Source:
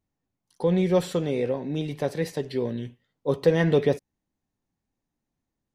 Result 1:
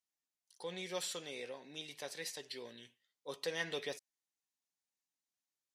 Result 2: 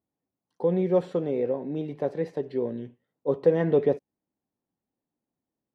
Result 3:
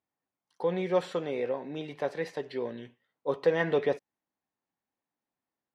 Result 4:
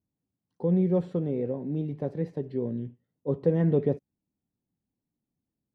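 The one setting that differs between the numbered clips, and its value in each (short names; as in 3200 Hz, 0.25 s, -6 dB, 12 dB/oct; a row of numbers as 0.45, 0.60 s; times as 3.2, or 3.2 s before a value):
band-pass, frequency: 7000, 450, 1200, 180 Hz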